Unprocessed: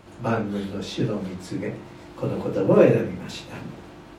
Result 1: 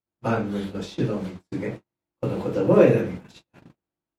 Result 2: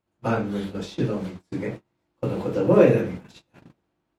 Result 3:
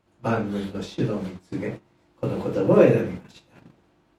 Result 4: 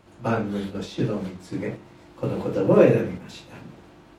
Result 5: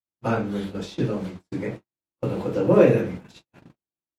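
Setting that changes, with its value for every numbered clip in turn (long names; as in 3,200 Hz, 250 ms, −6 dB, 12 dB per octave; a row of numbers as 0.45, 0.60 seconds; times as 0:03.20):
noise gate, range: −46, −32, −19, −6, −58 decibels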